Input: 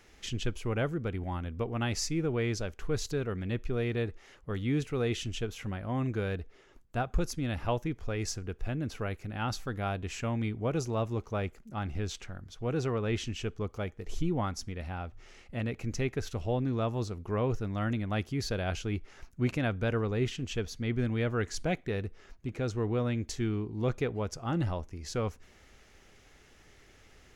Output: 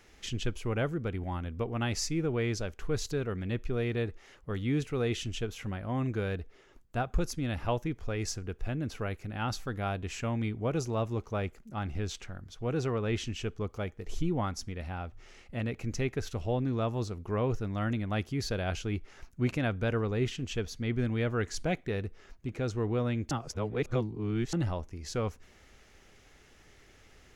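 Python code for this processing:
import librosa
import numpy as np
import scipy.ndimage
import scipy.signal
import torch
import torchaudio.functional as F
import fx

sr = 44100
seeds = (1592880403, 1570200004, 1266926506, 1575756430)

y = fx.edit(x, sr, fx.reverse_span(start_s=23.31, length_s=1.22), tone=tone)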